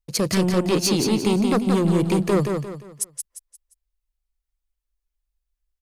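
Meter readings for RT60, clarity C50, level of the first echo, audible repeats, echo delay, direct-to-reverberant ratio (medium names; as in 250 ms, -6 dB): no reverb, no reverb, -5.0 dB, 4, 175 ms, no reverb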